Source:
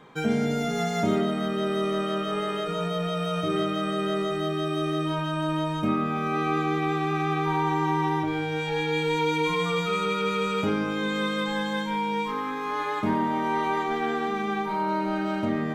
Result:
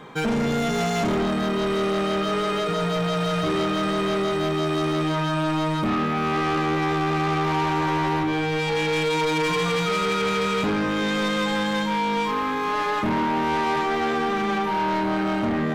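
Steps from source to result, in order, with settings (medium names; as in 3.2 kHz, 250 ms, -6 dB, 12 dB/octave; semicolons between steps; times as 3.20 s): saturation -28.5 dBFS, distortion -9 dB; trim +8.5 dB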